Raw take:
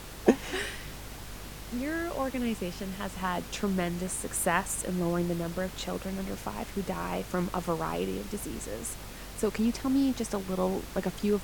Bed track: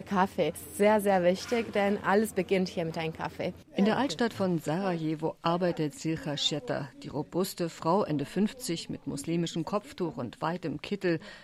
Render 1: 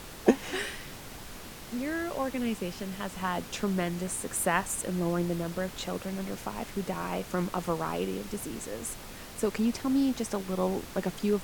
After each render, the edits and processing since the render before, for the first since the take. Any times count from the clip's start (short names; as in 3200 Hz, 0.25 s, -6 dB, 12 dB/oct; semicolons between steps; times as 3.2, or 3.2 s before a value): de-hum 50 Hz, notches 3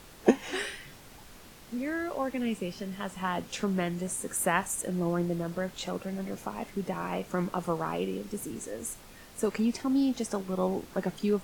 noise print and reduce 7 dB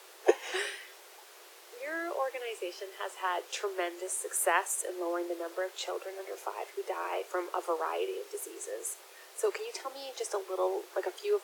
steep high-pass 350 Hz 96 dB/oct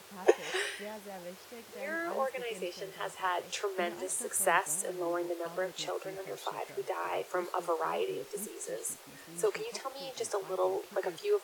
add bed track -20.5 dB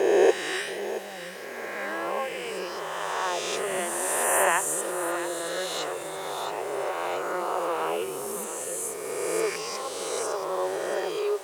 spectral swells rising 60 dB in 2.29 s; on a send: thinning echo 0.675 s, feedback 52%, high-pass 420 Hz, level -11 dB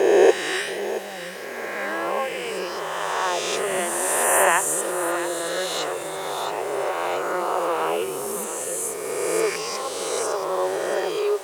gain +4.5 dB